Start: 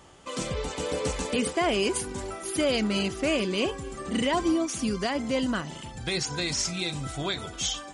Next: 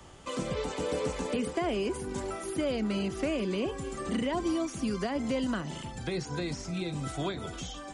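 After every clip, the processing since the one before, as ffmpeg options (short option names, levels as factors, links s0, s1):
-filter_complex "[0:a]lowshelf=f=150:g=6.5,acrossover=split=160|620[s0][s1][s2];[s0]acompressor=threshold=0.00631:ratio=4[s3];[s1]acompressor=threshold=0.0316:ratio=4[s4];[s2]acompressor=threshold=0.0178:ratio=4[s5];[s3][s4][s5]amix=inputs=3:normalize=0,acrossover=split=240|2000[s6][s7][s8];[s8]alimiter=level_in=3.55:limit=0.0631:level=0:latency=1:release=189,volume=0.282[s9];[s6][s7][s9]amix=inputs=3:normalize=0"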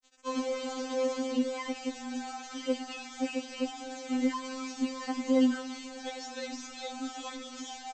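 -af "aresample=16000,acrusher=bits=6:mix=0:aa=0.000001,aresample=44100,afftfilt=real='re*3.46*eq(mod(b,12),0)':imag='im*3.46*eq(mod(b,12),0)':win_size=2048:overlap=0.75"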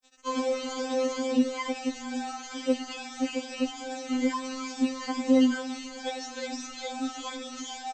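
-af "afftfilt=real='re*pow(10,8/40*sin(2*PI*(1.8*log(max(b,1)*sr/1024/100)/log(2)-(2.3)*(pts-256)/sr)))':imag='im*pow(10,8/40*sin(2*PI*(1.8*log(max(b,1)*sr/1024/100)/log(2)-(2.3)*(pts-256)/sr)))':win_size=1024:overlap=0.75,volume=1.41"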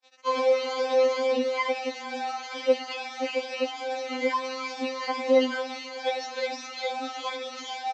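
-af "highpass=440,equalizer=f=530:t=q:w=4:g=7,equalizer=f=900:t=q:w=4:g=9,equalizer=f=2200:t=q:w=4:g=7,equalizer=f=4200:t=q:w=4:g=4,lowpass=f=5500:w=0.5412,lowpass=f=5500:w=1.3066,volume=1.19"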